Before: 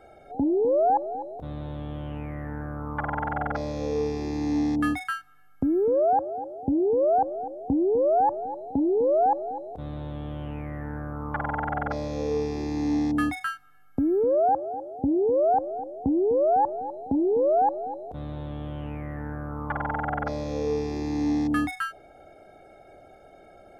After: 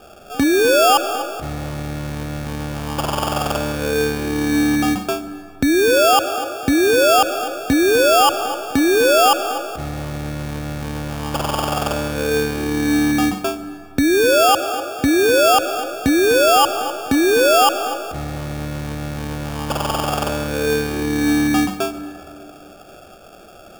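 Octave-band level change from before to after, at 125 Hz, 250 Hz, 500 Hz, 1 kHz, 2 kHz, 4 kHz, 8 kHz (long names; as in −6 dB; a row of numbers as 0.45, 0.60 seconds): +8.0 dB, +8.0 dB, +7.5 dB, +7.5 dB, +15.5 dB, +25.5 dB, can't be measured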